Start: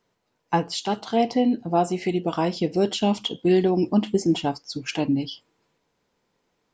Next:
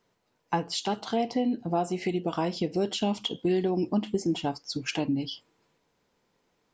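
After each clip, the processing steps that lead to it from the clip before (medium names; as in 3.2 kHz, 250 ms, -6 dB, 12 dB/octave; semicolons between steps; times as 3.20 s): compression 2:1, threshold -28 dBFS, peak gain reduction 7.5 dB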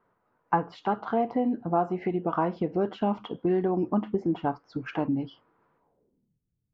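low-pass sweep 1.3 kHz -> 110 Hz, 5.76–6.40 s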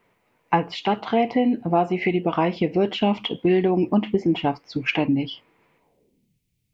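resonant high shelf 1.8 kHz +8 dB, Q 3; trim +6.5 dB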